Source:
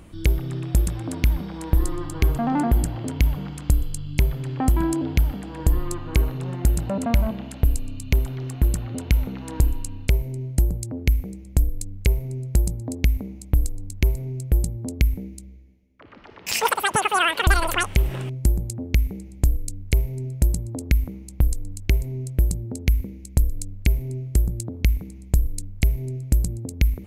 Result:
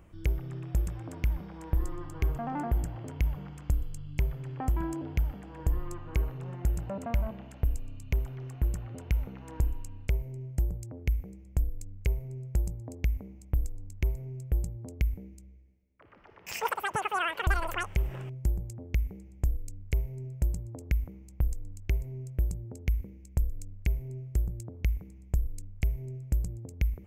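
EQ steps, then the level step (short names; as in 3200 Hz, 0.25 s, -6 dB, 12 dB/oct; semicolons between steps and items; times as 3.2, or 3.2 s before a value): fifteen-band EQ 250 Hz -7 dB, 4000 Hz -11 dB, 10000 Hz -11 dB; -8.5 dB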